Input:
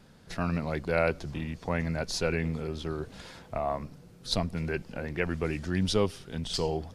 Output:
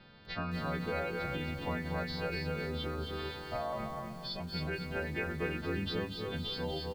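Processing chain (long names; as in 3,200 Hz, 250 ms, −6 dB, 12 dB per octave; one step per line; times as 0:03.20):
every partial snapped to a pitch grid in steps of 2 semitones
0:03.72–0:04.40: comb filter 5.2 ms, depth 87%
downward compressor 6 to 1, threshold −34 dBFS, peak gain reduction 15 dB
Butterworth low-pass 4,200 Hz 48 dB per octave
on a send: single-tap delay 269 ms −4.5 dB
on the sum: feedback echo at a low word length 241 ms, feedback 35%, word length 9 bits, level −6.5 dB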